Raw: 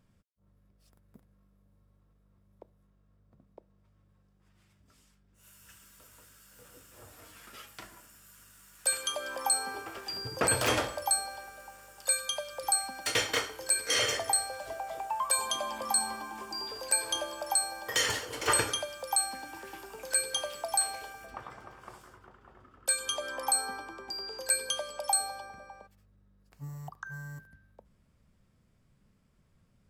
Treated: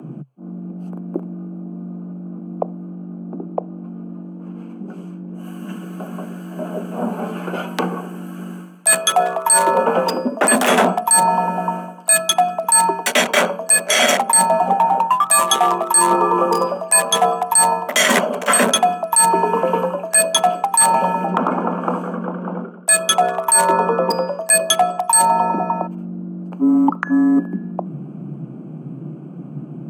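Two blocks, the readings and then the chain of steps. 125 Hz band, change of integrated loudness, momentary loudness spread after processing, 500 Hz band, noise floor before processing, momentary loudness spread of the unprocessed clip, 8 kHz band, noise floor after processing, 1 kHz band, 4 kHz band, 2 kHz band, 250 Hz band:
+18.0 dB, +14.5 dB, 19 LU, +19.0 dB, -68 dBFS, 18 LU, +14.0 dB, -34 dBFS, +20.5 dB, +11.0 dB, +14.0 dB, +27.0 dB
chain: local Wiener filter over 25 samples; peaking EQ 4.6 kHz -11.5 dB 0.56 oct; frequency shift +130 Hz; peaking EQ 150 Hz +9 dB 0.61 oct; reverse; compression 16:1, threshold -43 dBFS, peak gain reduction 21 dB; reverse; loudness maximiser +33 dB; trim -1 dB

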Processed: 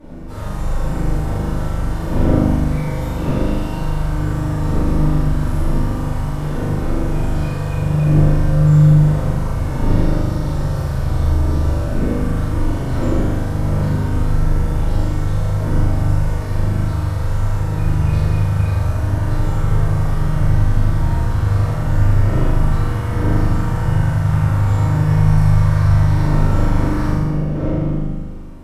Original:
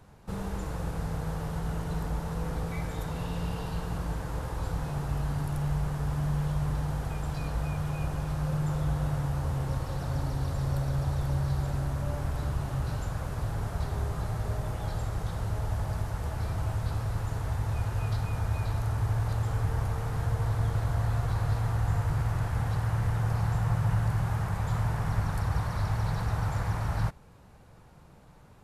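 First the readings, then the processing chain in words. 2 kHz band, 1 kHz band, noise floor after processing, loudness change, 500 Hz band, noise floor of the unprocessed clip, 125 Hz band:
+10.0 dB, +9.0 dB, -22 dBFS, +13.0 dB, +13.5 dB, -53 dBFS, +12.5 dB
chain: wind noise 260 Hz -34 dBFS; one-sided clip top -27 dBFS; flutter echo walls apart 6.8 m, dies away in 1.3 s; simulated room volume 130 m³, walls mixed, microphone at 2.5 m; trim -4.5 dB

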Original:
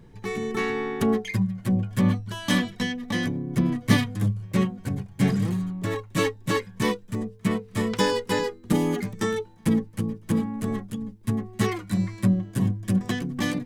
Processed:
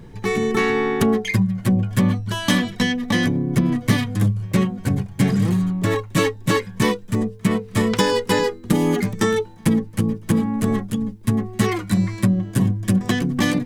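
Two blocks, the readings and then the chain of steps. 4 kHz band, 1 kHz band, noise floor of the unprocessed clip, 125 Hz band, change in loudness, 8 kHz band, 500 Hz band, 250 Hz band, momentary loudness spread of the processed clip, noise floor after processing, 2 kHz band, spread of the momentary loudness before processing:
+5.5 dB, +5.5 dB, -48 dBFS, +5.5 dB, +5.5 dB, +6.5 dB, +6.0 dB, +5.5 dB, 4 LU, -40 dBFS, +6.0 dB, 7 LU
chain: compression 5:1, threshold -23 dBFS, peak gain reduction 10 dB; trim +9 dB

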